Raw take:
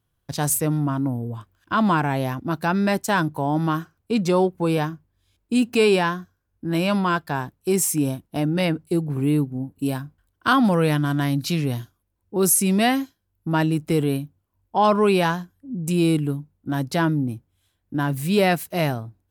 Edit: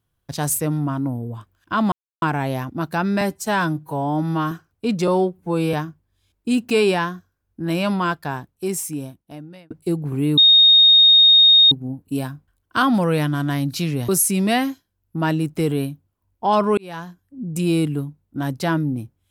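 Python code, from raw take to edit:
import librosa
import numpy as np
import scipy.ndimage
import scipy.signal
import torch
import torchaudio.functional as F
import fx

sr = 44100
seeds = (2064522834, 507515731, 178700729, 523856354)

y = fx.edit(x, sr, fx.insert_silence(at_s=1.92, length_s=0.3),
    fx.stretch_span(start_s=2.91, length_s=0.87, factor=1.5),
    fx.stretch_span(start_s=4.34, length_s=0.44, factor=1.5),
    fx.fade_out_span(start_s=7.16, length_s=1.59),
    fx.insert_tone(at_s=9.42, length_s=1.34, hz=3710.0, db=-8.0),
    fx.cut(start_s=11.79, length_s=0.61),
    fx.fade_in_span(start_s=15.09, length_s=0.64), tone=tone)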